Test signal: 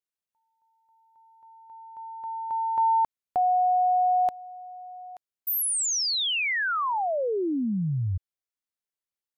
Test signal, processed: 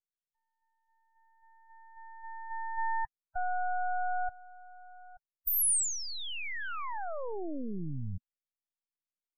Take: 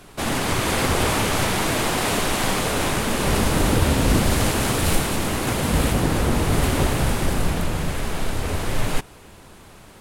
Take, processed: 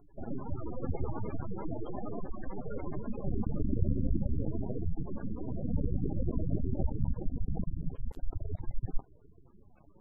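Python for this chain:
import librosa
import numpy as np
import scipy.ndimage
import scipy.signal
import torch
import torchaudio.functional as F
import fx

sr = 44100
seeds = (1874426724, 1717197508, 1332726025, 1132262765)

y = np.maximum(x, 0.0)
y = fx.spec_gate(y, sr, threshold_db=-15, keep='strong')
y = fx.high_shelf_res(y, sr, hz=6900.0, db=11.0, q=1.5)
y = y * librosa.db_to_amplitude(-5.5)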